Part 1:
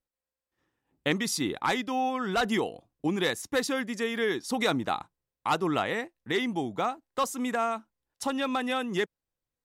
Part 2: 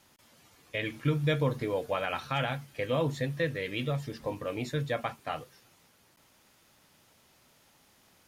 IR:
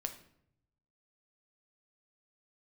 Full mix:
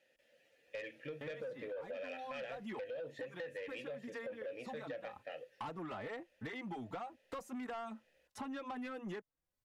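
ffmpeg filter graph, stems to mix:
-filter_complex "[0:a]acrossover=split=770|2200[a][b][c];[a]acompressor=threshold=-36dB:ratio=4[d];[b]acompressor=threshold=-40dB:ratio=4[e];[c]acompressor=threshold=-60dB:ratio=4[f];[d][e][f]amix=inputs=3:normalize=0,asplit=2[g][h];[h]adelay=3.9,afreqshift=2.5[i];[g][i]amix=inputs=2:normalize=1,adelay=150,volume=2dB[j];[1:a]asplit=3[k][l][m];[k]bandpass=f=530:t=q:w=8,volume=0dB[n];[l]bandpass=f=1.84k:t=q:w=8,volume=-6dB[o];[m]bandpass=f=2.48k:t=q:w=8,volume=-9dB[p];[n][o][p]amix=inputs=3:normalize=0,alimiter=level_in=6.5dB:limit=-24dB:level=0:latency=1:release=33,volume=-6.5dB,highshelf=f=9.1k:g=10.5,volume=3dB,asplit=2[q][r];[r]apad=whole_len=436727[s];[j][s]sidechaincompress=threshold=-49dB:ratio=5:attack=16:release=302[t];[t][q]amix=inputs=2:normalize=0,equalizer=f=390:w=4.5:g=-3.5,asoftclip=type=tanh:threshold=-33dB,acompressor=threshold=-41dB:ratio=6"

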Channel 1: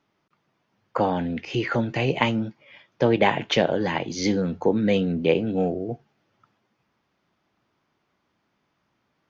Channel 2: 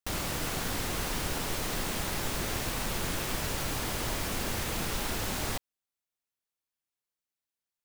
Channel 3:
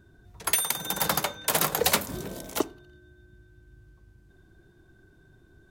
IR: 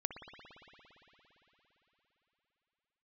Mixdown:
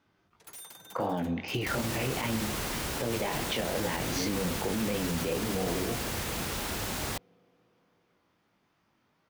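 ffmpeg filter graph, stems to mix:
-filter_complex "[0:a]flanger=delay=17.5:depth=5.6:speed=2.6,volume=2dB,asplit=2[a][b];[b]volume=-17dB[c];[1:a]highpass=43,adelay=1600,volume=-0.5dB[d];[2:a]highpass=f=210:p=1,aeval=exprs='0.0596*(abs(mod(val(0)/0.0596+3,4)-2)-1)':c=same,volume=-16dB[e];[a][e]amix=inputs=2:normalize=0,acompressor=threshold=-29dB:ratio=6,volume=0dB[f];[3:a]atrim=start_sample=2205[g];[c][g]afir=irnorm=-1:irlink=0[h];[d][f][h]amix=inputs=3:normalize=0,alimiter=limit=-21dB:level=0:latency=1:release=42"

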